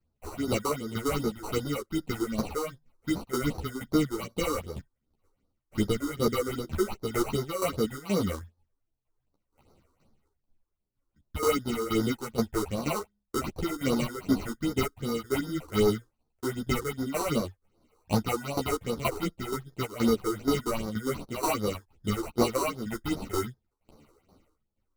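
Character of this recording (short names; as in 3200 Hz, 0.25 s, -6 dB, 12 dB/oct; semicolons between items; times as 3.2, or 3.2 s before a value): aliases and images of a low sample rate 1700 Hz, jitter 0%; phasing stages 6, 2.6 Hz, lowest notch 160–2700 Hz; tremolo saw down 2.1 Hz, depth 75%; a shimmering, thickened sound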